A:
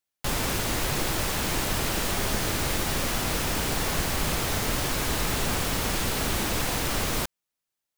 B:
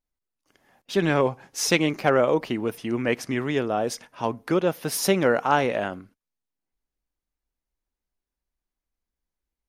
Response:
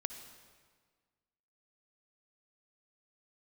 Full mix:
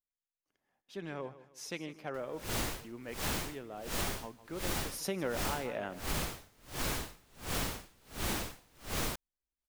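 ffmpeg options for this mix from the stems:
-filter_complex "[0:a]aeval=exprs='val(0)*pow(10,-39*(0.5-0.5*cos(2*PI*1.4*n/s))/20)':channel_layout=same,adelay=1900,volume=0dB[link_01];[1:a]volume=-10.5dB,afade=type=in:start_time=4.7:duration=0.54:silence=0.334965,asplit=2[link_02][link_03];[link_03]volume=-16dB,aecho=0:1:156|312|468|624|780:1|0.35|0.122|0.0429|0.015[link_04];[link_01][link_02][link_04]amix=inputs=3:normalize=0,acompressor=threshold=-31dB:ratio=6"

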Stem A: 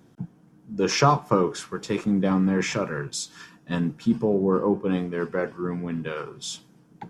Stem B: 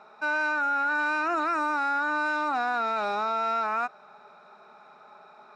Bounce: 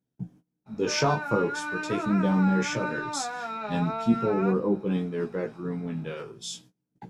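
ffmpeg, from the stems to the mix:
ffmpeg -i stem1.wav -i stem2.wav -filter_complex "[0:a]volume=0.5dB[link_01];[1:a]acrossover=split=3400[link_02][link_03];[link_03]acompressor=threshold=-58dB:ratio=4:attack=1:release=60[link_04];[link_02][link_04]amix=inputs=2:normalize=0,adelay=650,volume=1.5dB[link_05];[link_01][link_05]amix=inputs=2:normalize=0,agate=range=-24dB:threshold=-48dB:ratio=16:detection=peak,equalizer=frequency=1200:width_type=o:width=1.3:gain=-7,flanger=delay=15.5:depth=3.2:speed=0.42" out.wav

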